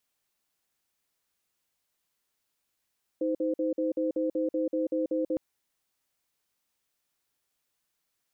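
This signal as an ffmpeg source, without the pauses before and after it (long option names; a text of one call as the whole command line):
ffmpeg -f lavfi -i "aevalsrc='0.0398*(sin(2*PI*316*t)+sin(2*PI*515*t))*clip(min(mod(t,0.19),0.14-mod(t,0.19))/0.005,0,1)':duration=2.16:sample_rate=44100" out.wav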